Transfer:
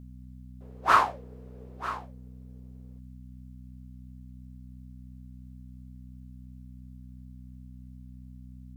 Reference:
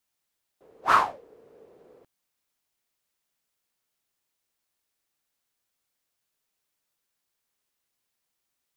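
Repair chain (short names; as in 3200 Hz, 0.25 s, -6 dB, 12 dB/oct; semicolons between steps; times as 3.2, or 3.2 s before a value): de-hum 62.9 Hz, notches 4; inverse comb 0.943 s -14 dB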